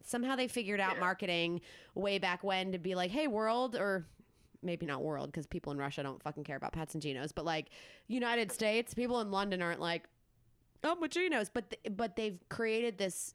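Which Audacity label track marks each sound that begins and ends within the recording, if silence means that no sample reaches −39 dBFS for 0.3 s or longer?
1.960000	4.010000	sound
4.640000	7.610000	sound
8.100000	10.040000	sound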